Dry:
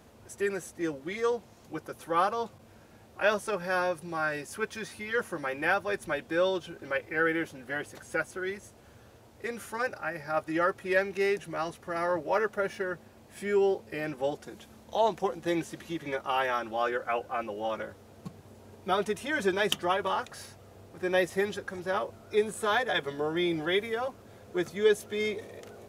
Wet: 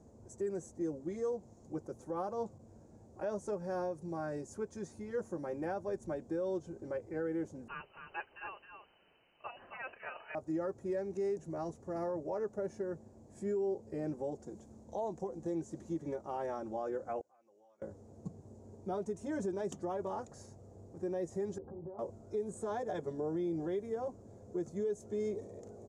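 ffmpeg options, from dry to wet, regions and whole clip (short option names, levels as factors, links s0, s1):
-filter_complex "[0:a]asettb=1/sr,asplit=3[s0][s1][s2];[s0]atrim=end=7.684[s3];[s1]atrim=start=7.68:end=10.35,asetpts=PTS-STARTPTS,afade=t=in:d=0.004:c=qsin,afade=t=out:st=2.666:d=0.004:c=qsin,aecho=1:1:266:0.447,atrim=end_sample=117747,acontrast=88,lowpass=f=2600:t=q:w=0.5098,lowpass=f=2600:t=q:w=0.6013,lowpass=f=2600:t=q:w=0.9,lowpass=f=2600:t=q:w=2.563,afreqshift=-3100[s4];[s2]atrim=start=10.346[s5];[s3][s4]acrossfade=d=0.004:c1=hsin:c2=qsin[s6];[s6][s5]acrossfade=d=0.004:c1=qsin:c2=hsin,asettb=1/sr,asplit=3[s7][s8][s9];[s7]atrim=end=17.214[s10];[s8]atrim=start=17.21:end=17.82,asetpts=PTS-STARTPTS,afade=t=in:d=0.004:c=qsin,afade=t=out:st=0.606:d=0.004:c=qsin,aderivative,acompressor=threshold=0.00141:ratio=2.5:attack=3.2:release=140:knee=1:detection=peak,lowpass=f=1800:p=1[s11];[s9]atrim=start=17.816[s12];[s10][s11]acrossfade=d=0.004:c1=hsin:c2=qsin[s13];[s13][s12]acrossfade=d=0.004:c1=qsin:c2=hsin,asettb=1/sr,asplit=3[s14][s15][s16];[s14]atrim=end=21.584[s17];[s15]atrim=start=21.58:end=21.99,asetpts=PTS-STARTPTS,afade=t=in:d=0.004:c=qsin,afade=t=out:st=0.406:d=0.004:c=qsin,lowpass=f=1000:w=0.5412,lowpass=f=1000:w=1.3066,acompressor=threshold=0.00891:ratio=8:attack=3.2:release=140:knee=1:detection=peak,asplit=2[s18][s19];[s19]adelay=13,volume=0.794[s20];[s18][s20]amix=inputs=2:normalize=0,atrim=end_sample=18081[s21];[s16]atrim=start=21.986[s22];[s17][s21]acrossfade=d=0.004:c1=hsin:c2=qsin[s23];[s23][s22]acrossfade=d=0.004:c1=qsin:c2=hsin,firequalizer=gain_entry='entry(300,0);entry(610,-4);entry(920,-8);entry(1300,-17);entry(2900,-27);entry(6900,-3);entry(12000,-26)':delay=0.05:min_phase=1,alimiter=level_in=1.5:limit=0.0631:level=0:latency=1:release=161,volume=0.668,volume=0.891"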